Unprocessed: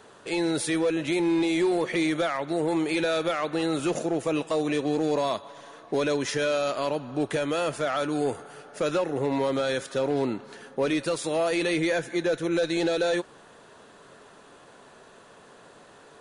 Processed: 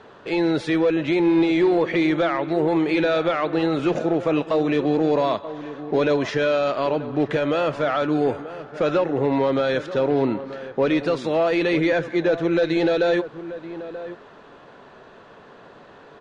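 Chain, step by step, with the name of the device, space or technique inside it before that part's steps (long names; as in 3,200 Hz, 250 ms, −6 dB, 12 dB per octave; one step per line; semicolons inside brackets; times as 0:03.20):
shout across a valley (high-frequency loss of the air 210 metres; slap from a distant wall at 160 metres, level −13 dB)
level +6 dB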